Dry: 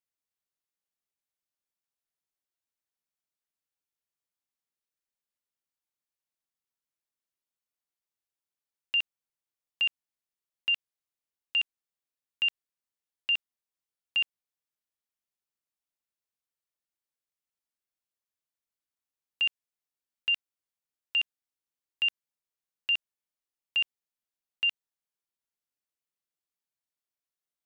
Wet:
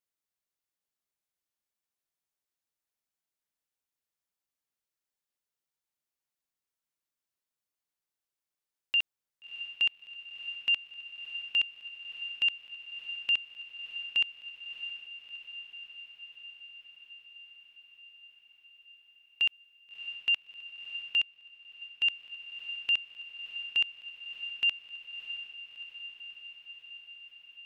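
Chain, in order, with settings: diffused feedback echo 0.65 s, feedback 73%, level -11 dB; 21.2–22.08 upward expander 1.5:1, over -41 dBFS

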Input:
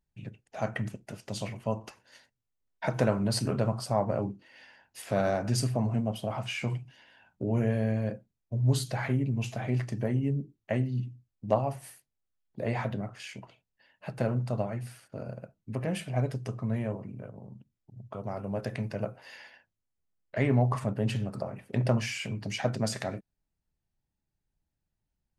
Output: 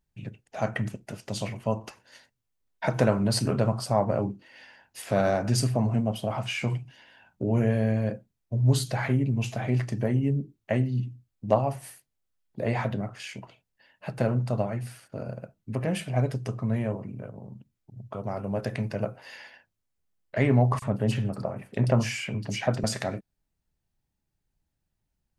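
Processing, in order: 20.79–22.84 bands offset in time highs, lows 30 ms, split 3600 Hz; gain +3.5 dB

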